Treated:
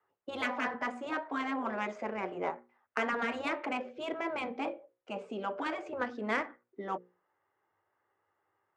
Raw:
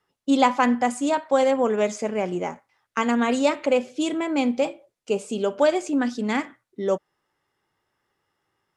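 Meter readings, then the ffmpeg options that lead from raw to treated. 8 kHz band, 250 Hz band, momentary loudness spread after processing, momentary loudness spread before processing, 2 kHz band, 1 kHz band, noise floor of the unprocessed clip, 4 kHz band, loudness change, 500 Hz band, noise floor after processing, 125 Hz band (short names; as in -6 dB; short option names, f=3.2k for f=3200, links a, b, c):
-22.0 dB, -15.5 dB, 8 LU, 9 LU, -5.0 dB, -10.5 dB, -78 dBFS, -11.5 dB, -12.5 dB, -15.0 dB, -81 dBFS, -13.5 dB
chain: -filter_complex "[0:a]acrossover=split=340 2300:gain=0.112 1 0.224[a][b][c];[a][b][c]amix=inputs=3:normalize=0,afftfilt=real='re*lt(hypot(re,im),0.251)':imag='im*lt(hypot(re,im),0.251)':win_size=1024:overlap=0.75,equalizer=f=99:t=o:w=0.52:g=14,bandreject=f=60:t=h:w=6,bandreject=f=120:t=h:w=6,bandreject=f=180:t=h:w=6,bandreject=f=240:t=h:w=6,bandreject=f=300:t=h:w=6,bandreject=f=360:t=h:w=6,bandreject=f=420:t=h:w=6,bandreject=f=480:t=h:w=6,bandreject=f=540:t=h:w=6,adynamicsmooth=sensitivity=3:basefreq=2.9k"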